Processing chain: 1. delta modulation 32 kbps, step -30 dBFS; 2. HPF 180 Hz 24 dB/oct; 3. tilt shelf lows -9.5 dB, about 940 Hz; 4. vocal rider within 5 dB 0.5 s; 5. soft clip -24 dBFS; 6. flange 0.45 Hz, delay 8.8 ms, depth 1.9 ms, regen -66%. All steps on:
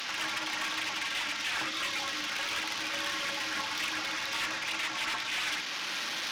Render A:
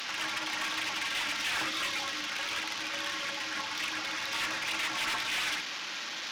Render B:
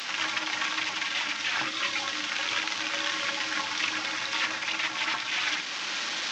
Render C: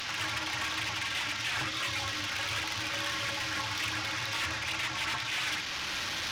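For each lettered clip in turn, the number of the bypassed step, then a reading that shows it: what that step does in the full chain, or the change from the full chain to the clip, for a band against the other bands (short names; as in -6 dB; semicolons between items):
4, momentary loudness spread change +2 LU; 5, distortion -11 dB; 2, 125 Hz band +13.5 dB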